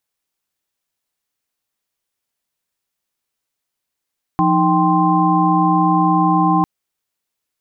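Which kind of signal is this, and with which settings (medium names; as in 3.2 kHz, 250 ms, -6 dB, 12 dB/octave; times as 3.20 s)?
chord F3/D#4/G5/C6 sine, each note -17 dBFS 2.25 s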